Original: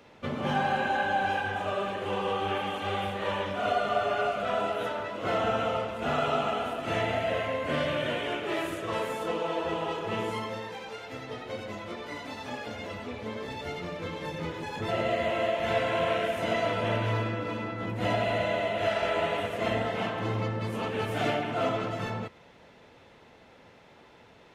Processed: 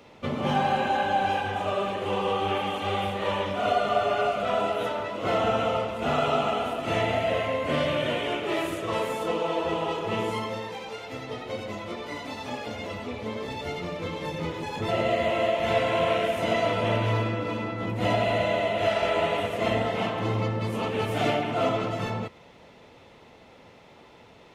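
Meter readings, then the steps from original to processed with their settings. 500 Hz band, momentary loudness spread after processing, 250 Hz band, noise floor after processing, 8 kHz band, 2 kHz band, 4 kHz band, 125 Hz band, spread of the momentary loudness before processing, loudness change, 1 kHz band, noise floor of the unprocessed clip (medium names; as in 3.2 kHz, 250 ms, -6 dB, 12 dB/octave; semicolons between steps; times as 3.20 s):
+3.5 dB, 10 LU, +3.5 dB, -52 dBFS, +3.5 dB, +1.0 dB, +3.5 dB, +3.5 dB, 10 LU, +3.0 dB, +3.0 dB, -55 dBFS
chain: peaking EQ 1.6 kHz -6.5 dB 0.3 oct; trim +3.5 dB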